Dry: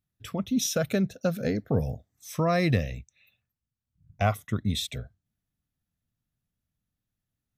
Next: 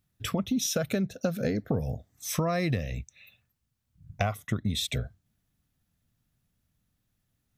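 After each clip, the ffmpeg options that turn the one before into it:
-af "acompressor=threshold=-34dB:ratio=6,volume=8.5dB"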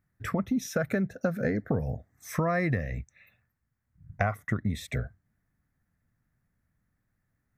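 -af "highshelf=f=2.4k:t=q:w=3:g=-8.5"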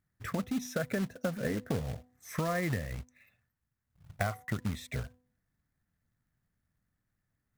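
-af "acrusher=bits=3:mode=log:mix=0:aa=0.000001,bandreject=f=249.3:t=h:w=4,bandreject=f=498.6:t=h:w=4,bandreject=f=747.9:t=h:w=4,bandreject=f=997.2:t=h:w=4,volume=-5dB"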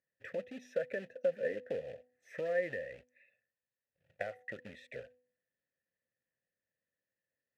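-filter_complex "[0:a]asplit=3[a][b][c];[a]bandpass=f=530:t=q:w=8,volume=0dB[d];[b]bandpass=f=1.84k:t=q:w=8,volume=-6dB[e];[c]bandpass=f=2.48k:t=q:w=8,volume=-9dB[f];[d][e][f]amix=inputs=3:normalize=0,volume=6dB"

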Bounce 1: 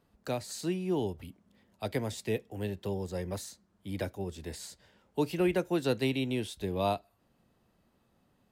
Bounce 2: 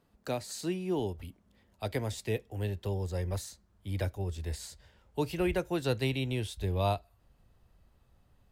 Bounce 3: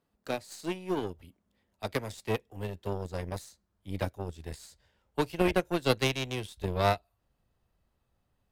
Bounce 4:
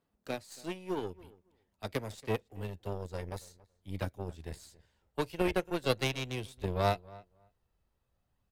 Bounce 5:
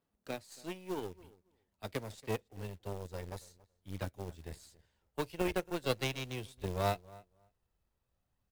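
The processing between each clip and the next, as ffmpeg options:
-af "asubboost=boost=9:cutoff=73"
-af "aeval=exprs='0.133*(cos(1*acos(clip(val(0)/0.133,-1,1)))-cos(1*PI/2))+0.0168*(cos(2*acos(clip(val(0)/0.133,-1,1)))-cos(2*PI/2))+0.0299*(cos(3*acos(clip(val(0)/0.133,-1,1)))-cos(3*PI/2))+0.00188*(cos(6*acos(clip(val(0)/0.133,-1,1)))-cos(6*PI/2))+0.00299*(cos(7*acos(clip(val(0)/0.133,-1,1)))-cos(7*PI/2))':c=same,lowshelf=f=120:g=-6,volume=8.5dB"
-filter_complex "[0:a]aphaser=in_gain=1:out_gain=1:delay=2.3:decay=0.22:speed=0.45:type=sinusoidal,asplit=2[a][b];[b]adelay=278,lowpass=f=2k:p=1,volume=-21dB,asplit=2[c][d];[d]adelay=278,lowpass=f=2k:p=1,volume=0.15[e];[a][c][e]amix=inputs=3:normalize=0,volume=-4dB"
-af "acrusher=bits=4:mode=log:mix=0:aa=0.000001,volume=-3.5dB"

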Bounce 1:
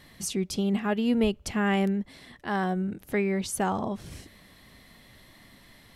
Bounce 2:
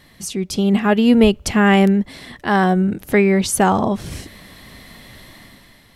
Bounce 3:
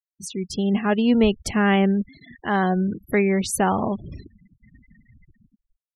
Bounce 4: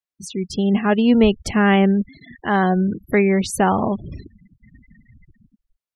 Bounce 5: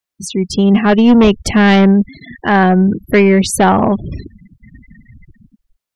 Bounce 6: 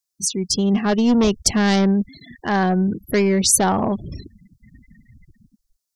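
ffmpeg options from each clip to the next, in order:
-af "dynaudnorm=f=130:g=9:m=9dB,volume=3.5dB"
-af "afftfilt=real='re*gte(hypot(re,im),0.0398)':imag='im*gte(hypot(re,im),0.0398)':win_size=1024:overlap=0.75,volume=-5.5dB"
-af "highshelf=f=7.2k:g=-8,volume=3.5dB"
-af "aeval=exprs='0.668*sin(PI/2*1.78*val(0)/0.668)':c=same"
-af "highshelf=f=3.8k:t=q:w=1.5:g=11,volume=-8dB"

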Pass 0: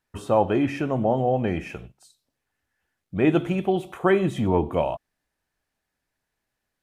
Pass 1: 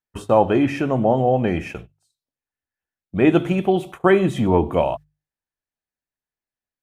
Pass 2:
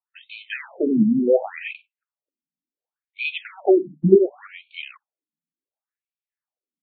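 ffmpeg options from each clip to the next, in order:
-af "agate=range=-19dB:threshold=-37dB:ratio=16:detection=peak,bandreject=f=50:t=h:w=6,bandreject=f=100:t=h:w=6,bandreject=f=150:t=h:w=6,volume=4.5dB"
-af "adynamicsmooth=sensitivity=7:basefreq=2.4k,lowshelf=f=110:t=q:w=3:g=-7.5,afftfilt=real='re*between(b*sr/1024,210*pow(3200/210,0.5+0.5*sin(2*PI*0.69*pts/sr))/1.41,210*pow(3200/210,0.5+0.5*sin(2*PI*0.69*pts/sr))*1.41)':imag='im*between(b*sr/1024,210*pow(3200/210,0.5+0.5*sin(2*PI*0.69*pts/sr))/1.41,210*pow(3200/210,0.5+0.5*sin(2*PI*0.69*pts/sr))*1.41)':win_size=1024:overlap=0.75,volume=5dB"

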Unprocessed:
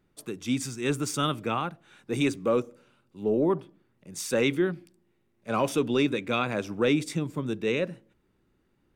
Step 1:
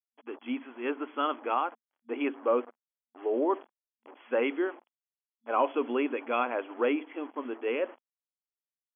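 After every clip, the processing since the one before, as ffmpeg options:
-af "acrusher=bits=6:mix=0:aa=0.5,equalizer=f=860:t=o:w=1.5:g=11,afftfilt=real='re*between(b*sr/4096,230,3400)':imag='im*between(b*sr/4096,230,3400)':win_size=4096:overlap=0.75,volume=-7dB"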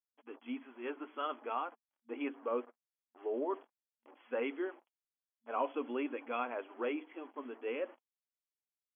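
-af "flanger=delay=3.3:depth=2.4:regen=-48:speed=0.5:shape=triangular,volume=-4.5dB"

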